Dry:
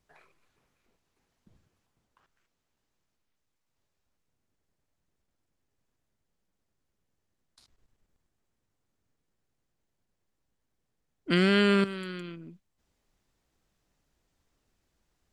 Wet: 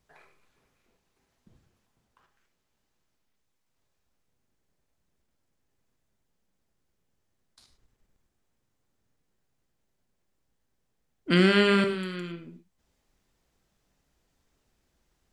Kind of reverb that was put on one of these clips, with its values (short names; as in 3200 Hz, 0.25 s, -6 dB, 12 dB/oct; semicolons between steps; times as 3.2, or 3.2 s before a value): non-linear reverb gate 0.13 s flat, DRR 6.5 dB; gain +2 dB